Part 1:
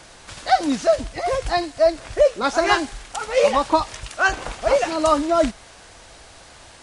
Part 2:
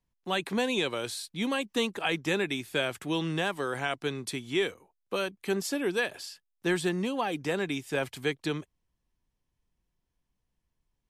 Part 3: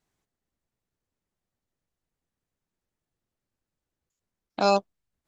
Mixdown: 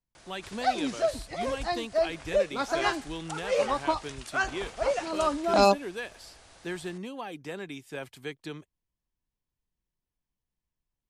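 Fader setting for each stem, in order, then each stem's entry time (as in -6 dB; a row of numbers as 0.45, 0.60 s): -9.5, -8.0, +1.0 dB; 0.15, 0.00, 0.95 s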